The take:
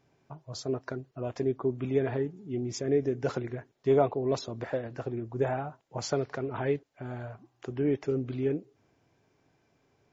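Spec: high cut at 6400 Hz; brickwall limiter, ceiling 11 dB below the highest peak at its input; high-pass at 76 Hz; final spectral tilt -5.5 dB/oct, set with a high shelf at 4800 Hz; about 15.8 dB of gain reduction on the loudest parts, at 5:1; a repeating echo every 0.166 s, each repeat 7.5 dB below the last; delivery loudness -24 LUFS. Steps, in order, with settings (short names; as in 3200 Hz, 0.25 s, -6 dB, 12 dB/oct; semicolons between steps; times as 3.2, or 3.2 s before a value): HPF 76 Hz; LPF 6400 Hz; high shelf 4800 Hz +8.5 dB; compressor 5:1, threshold -38 dBFS; limiter -35.5 dBFS; feedback echo 0.166 s, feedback 42%, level -7.5 dB; gain +21 dB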